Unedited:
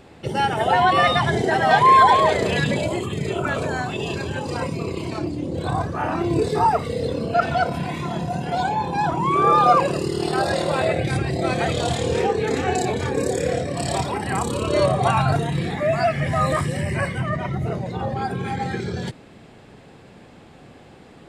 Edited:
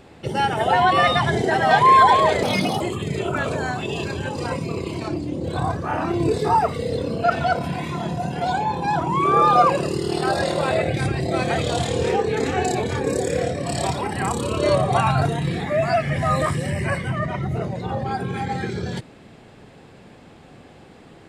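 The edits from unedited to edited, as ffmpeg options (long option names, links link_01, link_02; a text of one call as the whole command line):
ffmpeg -i in.wav -filter_complex "[0:a]asplit=3[link_01][link_02][link_03];[link_01]atrim=end=2.434[link_04];[link_02]atrim=start=2.43:end=2.91,asetpts=PTS-STARTPTS,asetrate=56448,aresample=44100[link_05];[link_03]atrim=start=2.906[link_06];[link_04][link_05]acrossfade=duration=0.004:curve1=hsin:curve2=hsin[link_07];[link_07][link_06]acrossfade=duration=0.004:curve1=hsin:curve2=hsin" out.wav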